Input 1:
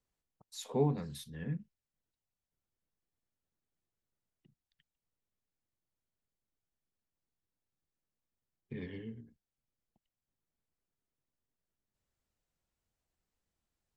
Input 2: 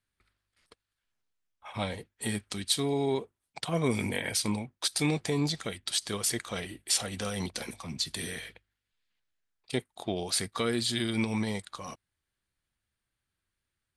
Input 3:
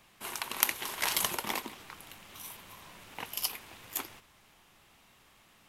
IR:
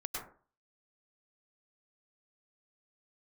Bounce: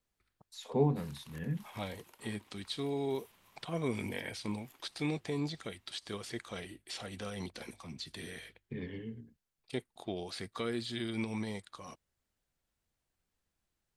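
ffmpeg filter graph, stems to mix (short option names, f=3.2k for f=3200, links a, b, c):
-filter_complex "[0:a]volume=1.5dB[a];[1:a]equalizer=f=350:t=o:w=0.77:g=2.5,volume=-7.5dB[b];[2:a]acompressor=threshold=-39dB:ratio=6,adelay=750,volume=-15dB[c];[a][b][c]amix=inputs=3:normalize=0,acrossover=split=4300[d][e];[e]acompressor=threshold=-53dB:ratio=4:attack=1:release=60[f];[d][f]amix=inputs=2:normalize=0"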